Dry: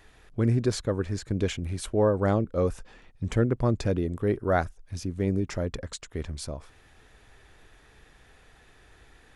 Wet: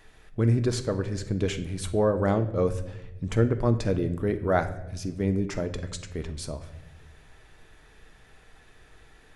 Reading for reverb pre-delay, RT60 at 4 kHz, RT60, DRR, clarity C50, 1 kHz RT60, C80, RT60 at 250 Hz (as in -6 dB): 5 ms, 0.65 s, 0.95 s, 7.5 dB, 12.5 dB, 0.80 s, 15.0 dB, 1.5 s